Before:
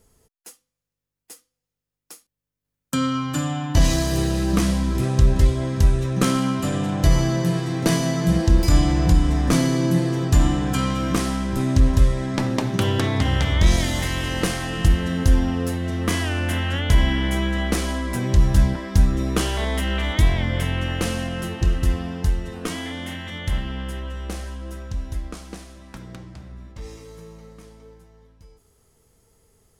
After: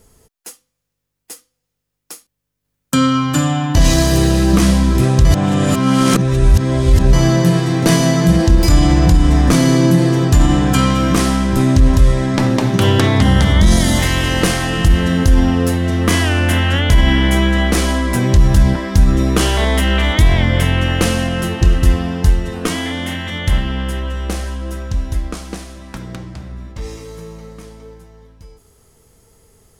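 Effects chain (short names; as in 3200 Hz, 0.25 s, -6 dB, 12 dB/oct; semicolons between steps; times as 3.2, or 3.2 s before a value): 5.25–7.13 reverse; 13.22–13.98 thirty-one-band EQ 200 Hz +10 dB, 2500 Hz -9 dB, 10000 Hz +7 dB; limiter -11 dBFS, peak gain reduction 6 dB; gain +9 dB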